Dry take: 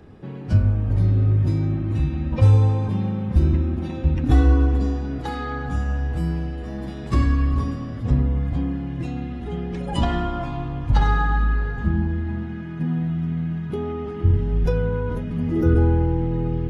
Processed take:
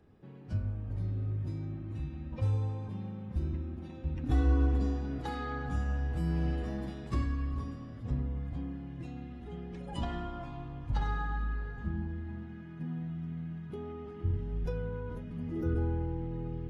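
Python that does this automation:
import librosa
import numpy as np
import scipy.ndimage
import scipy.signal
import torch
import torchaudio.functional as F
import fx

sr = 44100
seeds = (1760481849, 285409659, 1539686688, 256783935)

y = fx.gain(x, sr, db=fx.line((4.02, -16.0), (4.66, -8.5), (6.24, -8.5), (6.51, -2.0), (7.28, -14.0)))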